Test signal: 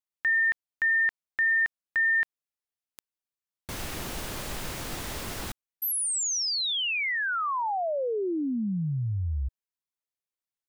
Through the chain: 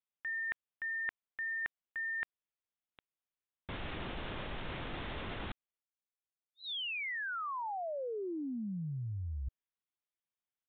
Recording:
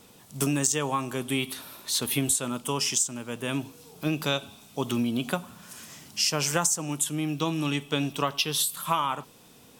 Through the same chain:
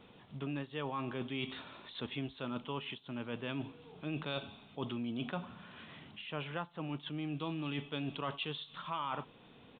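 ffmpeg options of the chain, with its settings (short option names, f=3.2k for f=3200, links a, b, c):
-af "areverse,acompressor=threshold=-37dB:ratio=5:attack=54:release=54:knee=1:detection=rms,areverse,aresample=8000,aresample=44100,volume=-3dB"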